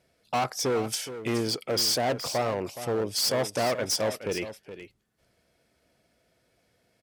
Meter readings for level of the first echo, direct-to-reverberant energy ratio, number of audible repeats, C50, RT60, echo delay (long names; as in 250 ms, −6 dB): −12.0 dB, no reverb audible, 1, no reverb audible, no reverb audible, 420 ms